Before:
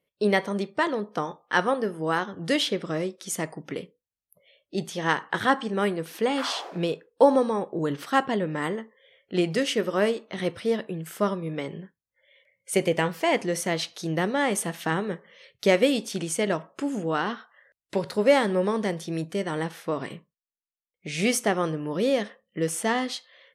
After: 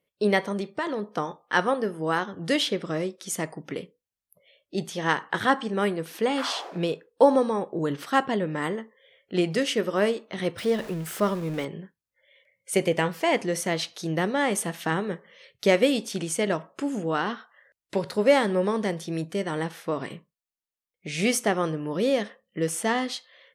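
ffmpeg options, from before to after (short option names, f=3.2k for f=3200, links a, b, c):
-filter_complex "[0:a]asettb=1/sr,asplit=3[a][b][c];[a]atrim=end=0.524[d];[b]atrim=start=0.52:end=1.13,asetpts=PTS-STARTPTS,afade=t=in:d=0.004:c=qsin,afade=t=out:st=0.606:d=0.004:c=qsin,acompressor=threshold=-25dB:ratio=3:attack=3.2:release=140:knee=1:detection=peak[e];[c]atrim=start=1.126[f];[d][e]acrossfade=d=0.004:c1=hsin:c2=qsin[g];[g][f]acrossfade=d=0.004:c1=qsin:c2=hsin,asettb=1/sr,asplit=3[h][i][j];[h]atrim=end=10.584[k];[i]atrim=start=10.58:end=11.65,asetpts=PTS-STARTPTS,afade=t=in:d=0.004:c=qsin,afade=t=out:st=1.066:d=0.004:c=qsin,aeval=exprs='val(0)+0.5*0.0158*sgn(val(0))':c=same[l];[j]atrim=start=11.646[m];[k][l]acrossfade=d=0.004:c1=hsin:c2=qsin[n];[n][m]acrossfade=d=0.004:c1=qsin:c2=hsin"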